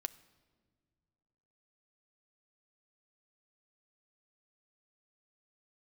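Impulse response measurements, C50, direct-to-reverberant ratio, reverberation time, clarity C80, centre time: 18.5 dB, 12.5 dB, no single decay rate, 20.0 dB, 3 ms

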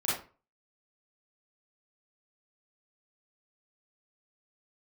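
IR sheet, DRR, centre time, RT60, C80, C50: -9.0 dB, 52 ms, 0.35 s, 8.0 dB, 1.0 dB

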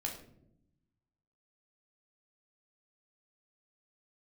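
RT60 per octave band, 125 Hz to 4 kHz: 1.6 s, 1.3 s, 0.95 s, 0.55 s, 0.45 s, 0.40 s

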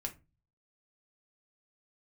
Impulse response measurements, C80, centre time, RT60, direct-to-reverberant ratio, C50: 24.0 dB, 8 ms, 0.25 s, 2.5 dB, 16.0 dB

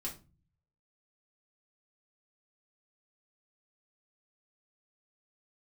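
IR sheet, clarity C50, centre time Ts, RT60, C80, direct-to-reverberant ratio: 11.0 dB, 17 ms, 0.30 s, 17.5 dB, -4.0 dB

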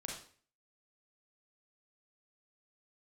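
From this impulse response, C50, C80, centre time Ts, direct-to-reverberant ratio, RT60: 2.5 dB, 8.0 dB, 39 ms, -1.5 dB, 0.45 s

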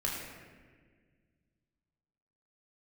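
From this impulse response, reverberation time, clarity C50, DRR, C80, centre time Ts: 1.6 s, 0.5 dB, -3.5 dB, 2.5 dB, 80 ms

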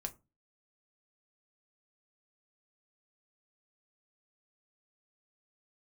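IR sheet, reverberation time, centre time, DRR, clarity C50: 0.25 s, 6 ms, 5.0 dB, 20.0 dB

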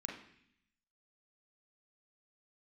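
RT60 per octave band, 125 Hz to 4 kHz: 1.0 s, 1.0 s, 0.65 s, 0.65 s, 0.90 s, 0.90 s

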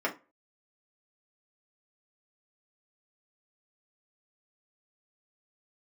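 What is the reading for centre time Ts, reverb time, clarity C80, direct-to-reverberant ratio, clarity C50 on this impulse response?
12 ms, 0.30 s, 22.0 dB, -2.5 dB, 14.5 dB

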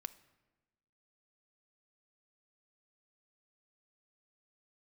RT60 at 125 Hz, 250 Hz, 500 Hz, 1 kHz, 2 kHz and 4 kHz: 1.4 s, 1.4 s, 1.2 s, 1.1 s, 1.0 s, 0.75 s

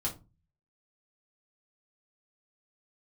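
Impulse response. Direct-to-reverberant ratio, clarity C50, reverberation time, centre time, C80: -4.0 dB, 13.5 dB, 0.30 s, 15 ms, 20.0 dB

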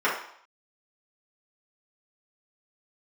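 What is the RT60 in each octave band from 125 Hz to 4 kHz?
0.30 s, 0.55 s, 0.60 s, 0.70 s, 0.60 s, 0.60 s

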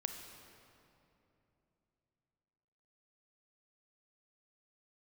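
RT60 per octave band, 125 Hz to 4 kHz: 4.0 s, 3.6 s, 3.2 s, 2.7 s, 2.3 s, 1.9 s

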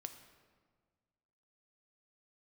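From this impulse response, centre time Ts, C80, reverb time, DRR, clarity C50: 17 ms, 11.0 dB, 1.6 s, 7.5 dB, 9.5 dB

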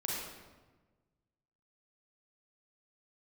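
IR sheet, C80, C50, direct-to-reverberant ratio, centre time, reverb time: 1.0 dB, -2.0 dB, -4.5 dB, 88 ms, 1.3 s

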